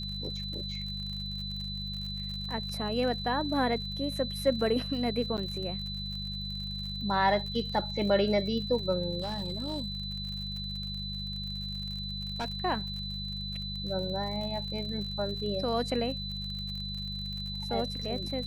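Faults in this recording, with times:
crackle 57 per s -38 dBFS
hum 50 Hz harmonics 4 -39 dBFS
whine 4 kHz -37 dBFS
5.37–5.38 s: dropout 8.5 ms
9.21–12.56 s: clipped -28.5 dBFS

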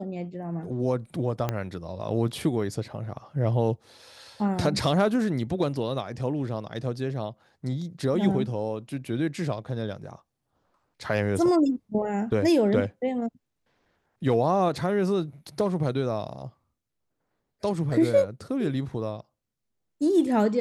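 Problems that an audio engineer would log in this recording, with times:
1.49 s: pop -13 dBFS

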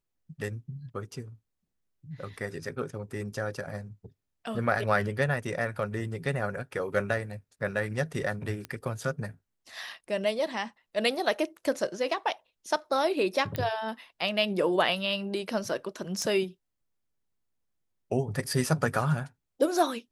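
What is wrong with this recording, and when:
8.65 s: pop -21 dBFS
13.56 s: pop -16 dBFS
16.22 s: pop -21 dBFS

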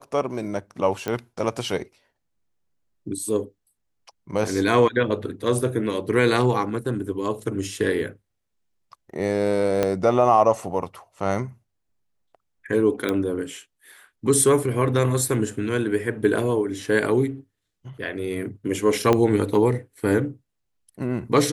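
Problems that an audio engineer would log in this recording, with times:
1.08 s: pop -13 dBFS
9.83 s: pop -8 dBFS
13.09 s: pop -11 dBFS
19.13 s: pop -7 dBFS

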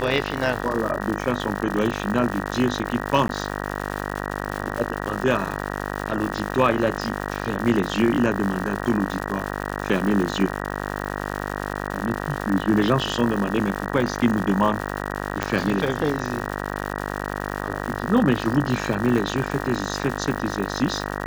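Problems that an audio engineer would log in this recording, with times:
buzz 50 Hz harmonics 38 -29 dBFS
crackle 210 per s -27 dBFS
3.28–3.29 s: dropout 12 ms
15.43 s: pop -7 dBFS

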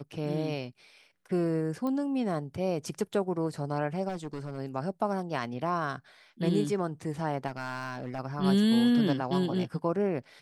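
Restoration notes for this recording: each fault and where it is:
1.87 s: pop -23 dBFS
4.08–4.59 s: clipped -31.5 dBFS
7.47–8.20 s: clipped -29 dBFS

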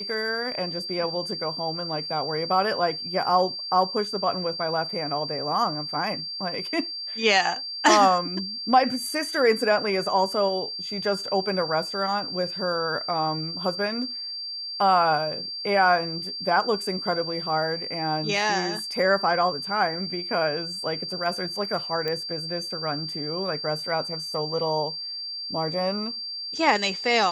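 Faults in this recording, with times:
whine 4.7 kHz -31 dBFS
22.08 s: pop -16 dBFS

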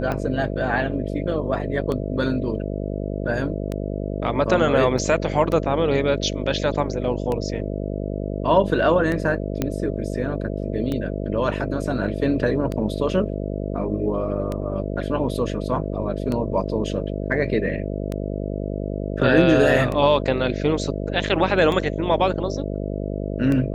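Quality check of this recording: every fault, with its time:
buzz 50 Hz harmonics 13 -27 dBFS
tick 33 1/3 rpm -14 dBFS
4.98 s: dropout 3.6 ms
9.62 s: pop -9 dBFS

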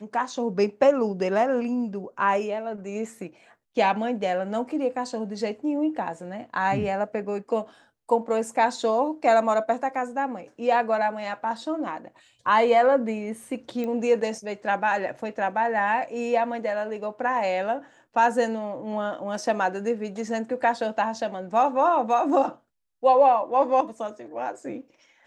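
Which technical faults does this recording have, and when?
13.84 s: pop -20 dBFS

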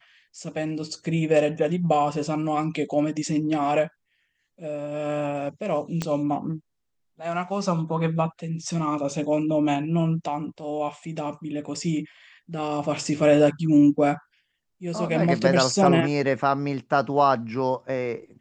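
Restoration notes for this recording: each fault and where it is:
6.02 s: pop -13 dBFS

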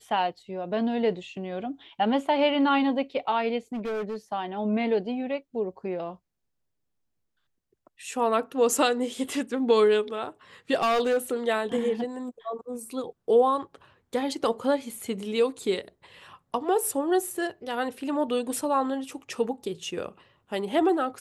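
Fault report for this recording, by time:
3.73–4.17 s: clipped -28 dBFS
10.74–11.34 s: clipped -20 dBFS

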